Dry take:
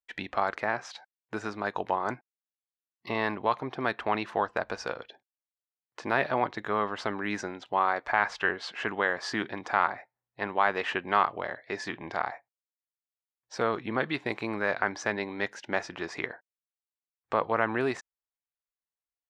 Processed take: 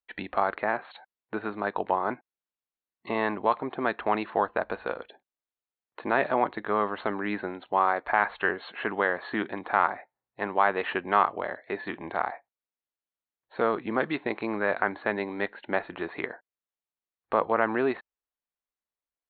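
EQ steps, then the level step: brick-wall FIR low-pass 4400 Hz; bell 120 Hz -10 dB 0.63 oct; high shelf 2800 Hz -11.5 dB; +3.5 dB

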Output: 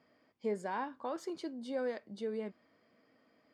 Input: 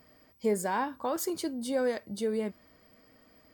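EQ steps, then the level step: BPF 170–4100 Hz; -7.0 dB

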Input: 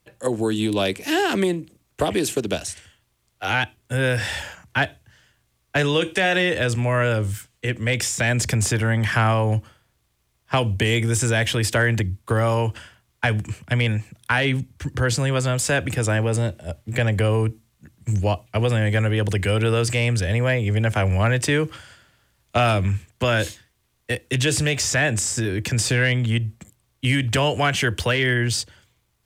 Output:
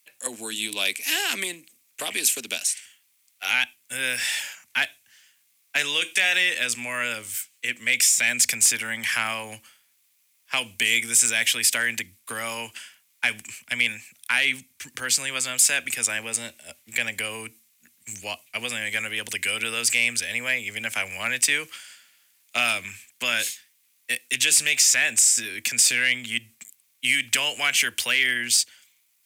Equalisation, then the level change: differentiator; bell 240 Hz +12 dB 0.31 oct; bell 2300 Hz +8.5 dB 0.54 oct; +7.0 dB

